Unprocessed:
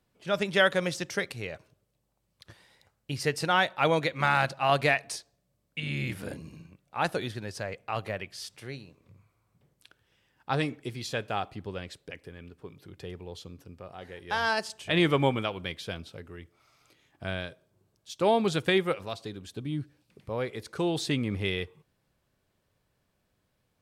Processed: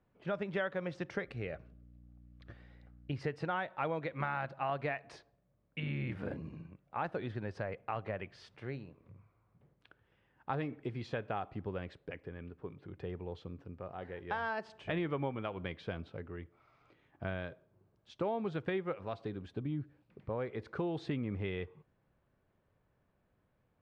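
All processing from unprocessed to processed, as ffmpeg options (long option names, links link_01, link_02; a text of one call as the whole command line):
ffmpeg -i in.wav -filter_complex "[0:a]asettb=1/sr,asplit=3[link_01][link_02][link_03];[link_01]atrim=end=1.274[link_04];[link_02]atrim=start=1.27:end=3.11,asetpts=PTS-STARTPTS,afade=type=in:duration=0.004:curve=qsin,afade=type=out:start_time=1.836:duration=0.004:curve=qsin,equalizer=frequency=890:width=5.5:gain=-5.5,aeval=exprs='val(0)+0.00158*(sin(2*PI*60*n/s)+sin(2*PI*2*60*n/s)/2+sin(2*PI*3*60*n/s)/3+sin(2*PI*4*60*n/s)/4+sin(2*PI*5*60*n/s)/5)':channel_layout=same,bandreject=frequency=990:width=6.3[link_05];[link_03]atrim=start=3.106[link_06];[link_04][link_05]acrossfade=duration=0.004:curve1=hsin:curve2=qsin[link_07];[link_07][link_06]acrossfade=duration=0.004:curve1=qsin:curve2=hsin,lowpass=1800,acompressor=threshold=-34dB:ratio=4" out.wav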